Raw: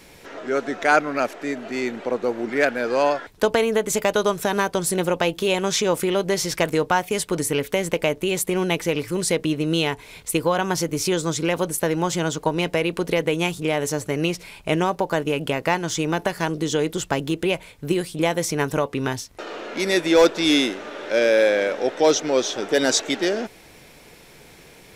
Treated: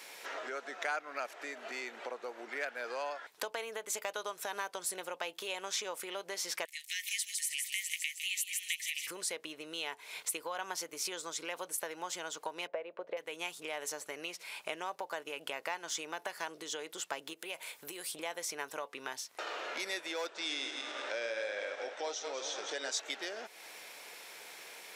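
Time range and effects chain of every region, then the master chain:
6.65–9.07 s: Chebyshev high-pass 1.8 kHz, order 8 + feedback echo behind a high-pass 156 ms, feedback 54%, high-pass 4 kHz, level -3.5 dB
12.67–13.17 s: low-pass 1.9 kHz + peaking EQ 580 Hz +15 dB 0.56 oct + upward expansion, over -23 dBFS
17.33–18.12 s: treble shelf 8.6 kHz +11 dB + compression 2:1, threshold -32 dBFS
20.29–22.92 s: backward echo that repeats 105 ms, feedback 53%, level -6.5 dB + brick-wall FIR low-pass 9.6 kHz
whole clip: compression 4:1, threshold -34 dBFS; high-pass 710 Hz 12 dB/octave

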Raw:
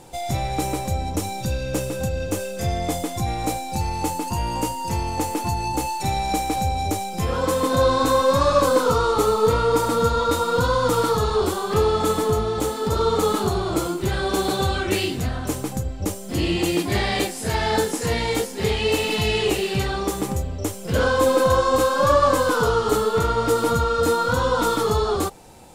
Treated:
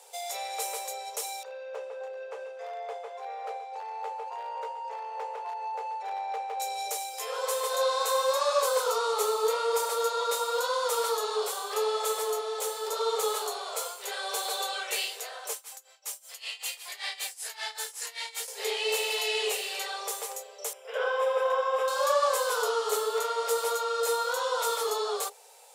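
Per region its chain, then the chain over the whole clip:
1.43–6.60 s: low-pass 1.5 kHz + hard clipper -17.5 dBFS + delay 712 ms -12 dB
15.53–18.48 s: high-pass 1.1 kHz + tremolo 5.2 Hz, depth 88%
20.73–21.88 s: short-mantissa float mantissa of 4-bit + Savitzky-Golay filter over 25 samples
whole clip: Chebyshev high-pass 410 Hz, order 10; treble shelf 3.6 kHz +9 dB; trim -8 dB

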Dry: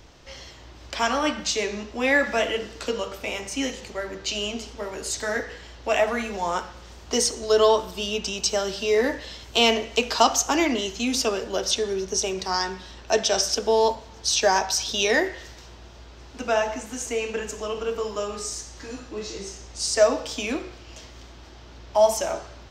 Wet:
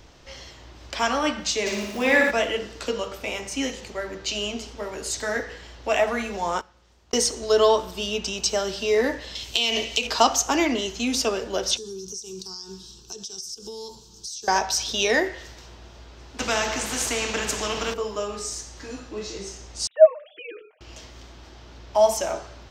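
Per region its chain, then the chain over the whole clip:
1.65–2.30 s: crackle 270 per s -31 dBFS + flutter echo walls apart 10 m, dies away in 1 s
6.61–7.16 s: gate -31 dBFS, range -55 dB + swell ahead of each attack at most 33 dB/s
9.35–10.07 s: resonant high shelf 2.1 kHz +8.5 dB, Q 1.5 + compression 16:1, threshold -17 dBFS
11.77–14.48 s: FFT filter 320 Hz 0 dB, 660 Hz -16 dB, 2.2 kHz -8 dB, 5.3 kHz +7 dB + compression 8:1, threshold -31 dBFS + static phaser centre 400 Hz, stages 8
16.39–17.94 s: treble shelf 9 kHz -6 dB + spectrum-flattening compressor 2:1
19.87–20.81 s: formants replaced by sine waves + comb 6.5 ms, depth 52%
whole clip: none

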